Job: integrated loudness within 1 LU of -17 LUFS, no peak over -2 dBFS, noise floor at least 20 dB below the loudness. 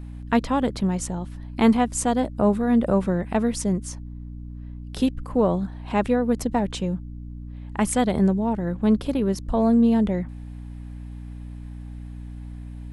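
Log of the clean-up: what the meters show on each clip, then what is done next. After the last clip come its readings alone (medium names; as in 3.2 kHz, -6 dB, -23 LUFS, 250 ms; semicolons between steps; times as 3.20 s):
hum 60 Hz; highest harmonic 300 Hz; hum level -33 dBFS; loudness -23.0 LUFS; peak level -5.0 dBFS; loudness target -17.0 LUFS
-> de-hum 60 Hz, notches 5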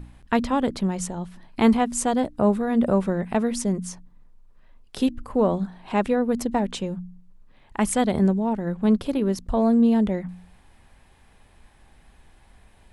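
hum not found; loudness -23.5 LUFS; peak level -5.5 dBFS; loudness target -17.0 LUFS
-> trim +6.5 dB; peak limiter -2 dBFS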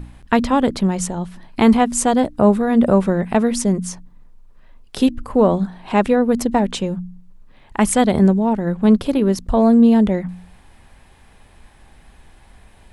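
loudness -17.0 LUFS; peak level -2.0 dBFS; noise floor -49 dBFS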